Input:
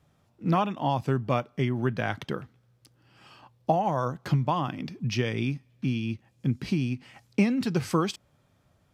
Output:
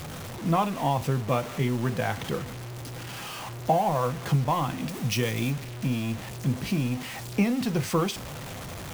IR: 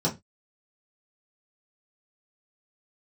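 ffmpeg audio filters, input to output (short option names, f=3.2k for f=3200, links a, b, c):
-filter_complex "[0:a]aeval=exprs='val(0)+0.5*0.0282*sgn(val(0))':c=same,asettb=1/sr,asplit=3[a][b][c];[a]atrim=end=4.894[d];[b]atrim=start=4.89:end=5.52,asetpts=PTS-STARTPTS,afade=t=in:d=0.004:c=qsin,afade=t=out:st=0.626:d=0.004:c=qsin,highshelf=f=6k:g=10.5[e];[c]atrim=start=5.516[f];[d][e]acrossfade=d=0.004:c1=hsin:c2=qsin[g];[g][f]acrossfade=d=0.004:c1=qsin:c2=hsin,asplit=2[h][i];[i]highpass=540[j];[1:a]atrim=start_sample=2205,lowshelf=f=370:g=11[k];[j][k]afir=irnorm=-1:irlink=0,volume=-20.5dB[l];[h][l]amix=inputs=2:normalize=0,acrusher=bits=6:mix=0:aa=0.000001,volume=-1.5dB"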